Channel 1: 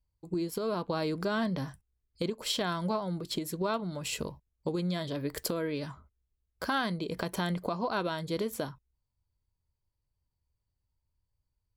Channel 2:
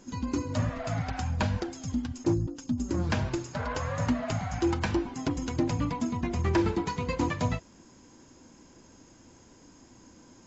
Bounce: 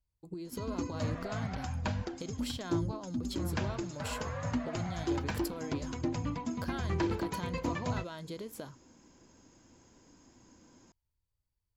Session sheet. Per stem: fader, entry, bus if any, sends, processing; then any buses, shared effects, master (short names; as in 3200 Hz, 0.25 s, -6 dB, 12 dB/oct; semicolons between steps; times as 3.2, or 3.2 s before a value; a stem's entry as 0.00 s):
-4.5 dB, 0.00 s, no send, compressor, threshold -34 dBFS, peak gain reduction 8 dB
-6.0 dB, 0.45 s, no send, dry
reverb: off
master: dry